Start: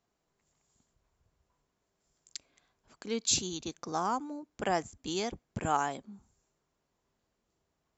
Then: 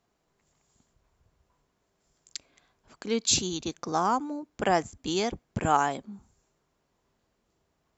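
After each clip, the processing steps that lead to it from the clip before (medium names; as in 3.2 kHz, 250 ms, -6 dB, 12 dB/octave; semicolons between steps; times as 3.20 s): treble shelf 6.7 kHz -5 dB; trim +6 dB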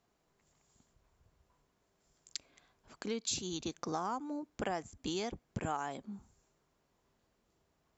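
compression 4:1, threshold -33 dBFS, peak gain reduction 13.5 dB; trim -2 dB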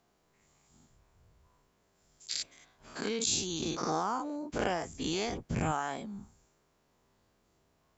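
every event in the spectrogram widened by 120 ms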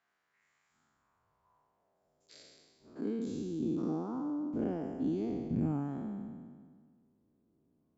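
spectral sustain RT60 1.74 s; tone controls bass +9 dB, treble +5 dB; band-pass sweep 1.7 kHz -> 280 Hz, 0.62–3.21 s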